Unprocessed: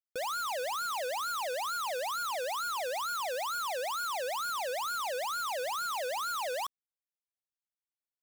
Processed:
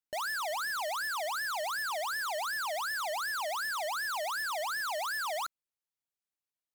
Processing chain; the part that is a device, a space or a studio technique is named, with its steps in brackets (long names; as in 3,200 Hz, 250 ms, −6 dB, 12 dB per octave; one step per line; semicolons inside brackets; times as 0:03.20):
nightcore (speed change +22%)